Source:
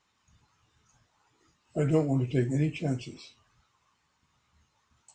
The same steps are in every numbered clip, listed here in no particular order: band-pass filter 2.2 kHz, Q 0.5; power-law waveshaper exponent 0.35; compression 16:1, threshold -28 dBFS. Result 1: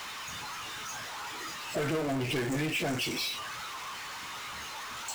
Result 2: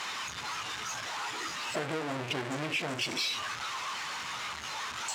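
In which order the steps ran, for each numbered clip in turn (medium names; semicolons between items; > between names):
band-pass filter > power-law waveshaper > compression; power-law waveshaper > band-pass filter > compression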